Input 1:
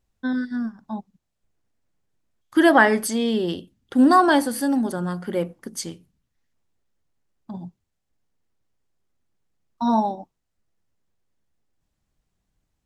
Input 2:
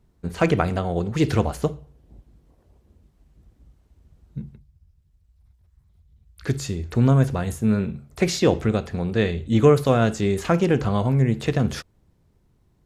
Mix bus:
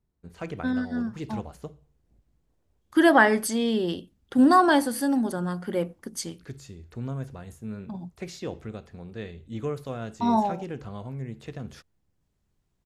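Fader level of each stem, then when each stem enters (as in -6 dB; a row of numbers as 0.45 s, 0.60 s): -2.5 dB, -16.0 dB; 0.40 s, 0.00 s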